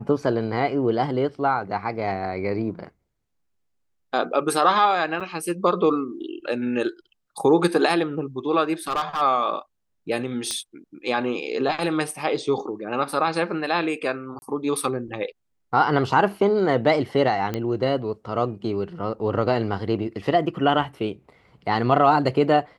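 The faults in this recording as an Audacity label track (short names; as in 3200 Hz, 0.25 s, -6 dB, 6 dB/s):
5.200000	5.210000	gap 6.3 ms
8.870000	9.220000	clipped -19.5 dBFS
10.510000	10.510000	pop -13 dBFS
14.390000	14.420000	gap 31 ms
17.540000	17.540000	pop -13 dBFS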